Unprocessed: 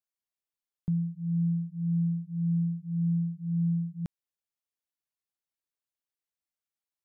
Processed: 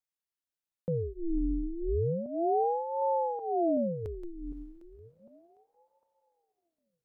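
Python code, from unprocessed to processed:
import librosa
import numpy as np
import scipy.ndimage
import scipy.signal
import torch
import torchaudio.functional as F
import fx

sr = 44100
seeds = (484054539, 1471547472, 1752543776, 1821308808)

y = fx.reverse_delay_fb(x, sr, ms=377, feedback_pct=43, wet_db=-10.5)
y = fx.echo_diffused(y, sr, ms=536, feedback_pct=41, wet_db=-14)
y = fx.ring_lfo(y, sr, carrier_hz=420.0, swing_pct=70, hz=0.33)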